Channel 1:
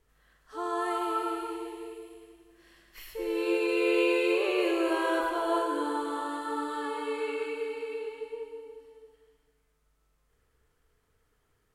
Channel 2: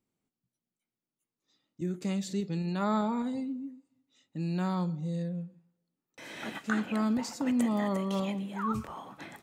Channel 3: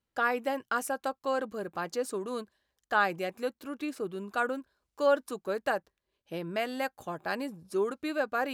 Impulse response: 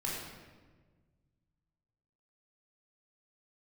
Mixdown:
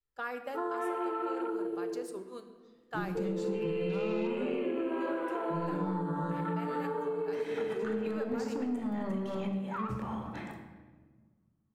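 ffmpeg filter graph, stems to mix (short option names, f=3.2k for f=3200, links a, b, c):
-filter_complex "[0:a]afwtdn=0.0158,adynamicequalizer=threshold=0.01:dfrequency=440:dqfactor=1.8:tfrequency=440:tqfactor=1.8:attack=5:release=100:ratio=0.375:range=3:mode=boostabove:tftype=bell,volume=2.5dB,asplit=2[a][b];[b]volume=-15.5dB[c];[1:a]highshelf=f=2.8k:g=-10,alimiter=level_in=0.5dB:limit=-24dB:level=0:latency=1,volume=-0.5dB,asoftclip=type=tanh:threshold=-28dB,adelay=1150,volume=0dB,asplit=2[d][e];[e]volume=-4dB[f];[2:a]volume=-10.5dB,asplit=2[g][h];[h]volume=-10dB[i];[a][g]amix=inputs=2:normalize=0,agate=range=-21dB:threshold=-43dB:ratio=16:detection=peak,acompressor=threshold=-28dB:ratio=6,volume=0dB[j];[3:a]atrim=start_sample=2205[k];[c][f][i]amix=inputs=3:normalize=0[l];[l][k]afir=irnorm=-1:irlink=0[m];[d][j][m]amix=inputs=3:normalize=0,acompressor=threshold=-32dB:ratio=3"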